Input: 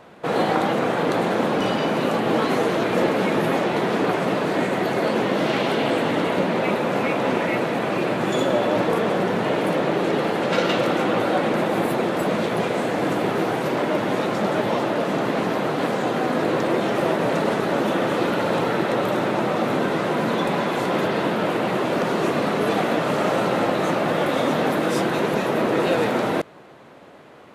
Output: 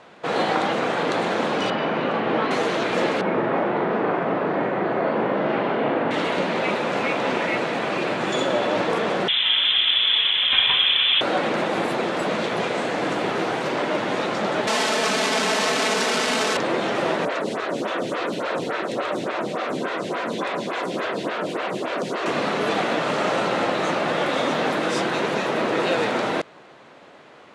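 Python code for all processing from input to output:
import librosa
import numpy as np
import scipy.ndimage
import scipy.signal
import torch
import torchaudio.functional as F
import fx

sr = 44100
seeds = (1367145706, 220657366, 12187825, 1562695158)

y = fx.chain(x, sr, fx.lowpass(hz=2600.0, slope=12),
    fx.doubler(ms=41.0, db=-11.5), at=(1.7, 2.51))
y = fx.chain(y, sr, fx.lowpass(hz=1500.0, slope=12),
    fx.doubler(ms=40.0, db=-4), at=(3.21, 6.11))
y = fx.chain(y, sr, fx.highpass(hz=230.0, slope=12),
    fx.freq_invert(carrier_hz=3800), at=(9.28, 11.21))
y = fx.chain(y, sr, fx.clip_1bit(),
    fx.highpass(hz=180.0, slope=12),
    fx.comb(ms=4.6, depth=0.74), at=(14.67, 16.57))
y = fx.chain(y, sr, fx.high_shelf(hz=6600.0, db=5.5),
    fx.notch(hz=850.0, q=9.1),
    fx.stagger_phaser(hz=3.5), at=(17.25, 22.26))
y = scipy.signal.sosfilt(scipy.signal.bessel(4, 5900.0, 'lowpass', norm='mag', fs=sr, output='sos'), y)
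y = fx.tilt_eq(y, sr, slope=2.0)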